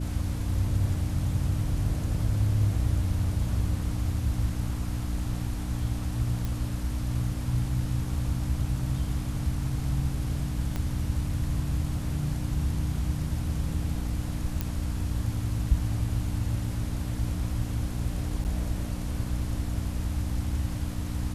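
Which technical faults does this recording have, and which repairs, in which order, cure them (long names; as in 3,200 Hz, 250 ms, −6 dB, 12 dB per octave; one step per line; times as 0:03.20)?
mains hum 60 Hz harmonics 5 −33 dBFS
0:06.45: click
0:10.76: click −18 dBFS
0:14.61: click
0:18.44–0:18.45: drop-out 8.5 ms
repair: click removal
hum removal 60 Hz, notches 5
repair the gap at 0:18.44, 8.5 ms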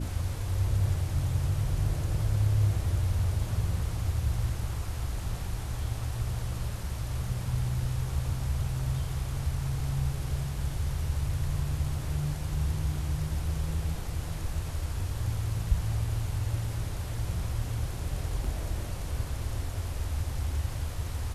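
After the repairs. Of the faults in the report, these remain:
0:10.76: click
0:14.61: click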